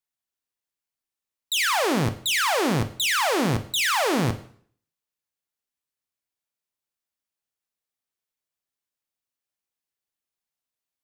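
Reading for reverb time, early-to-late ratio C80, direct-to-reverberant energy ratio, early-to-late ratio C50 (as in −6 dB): 0.55 s, 17.0 dB, 9.5 dB, 14.0 dB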